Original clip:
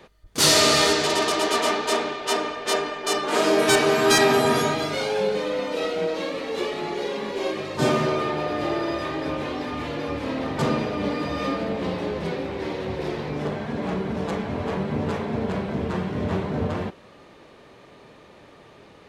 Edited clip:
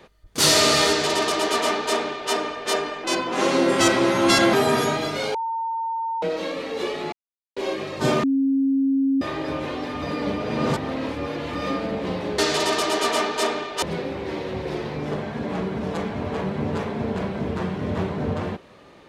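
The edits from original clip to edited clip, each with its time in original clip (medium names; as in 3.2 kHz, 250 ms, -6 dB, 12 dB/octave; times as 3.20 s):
0.88–2.32 s: copy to 12.16 s
3.04–4.31 s: speed 85%
5.12–6.00 s: bleep 908 Hz -23.5 dBFS
6.90–7.34 s: mute
8.01–8.99 s: bleep 271 Hz -17 dBFS
9.80–11.33 s: reverse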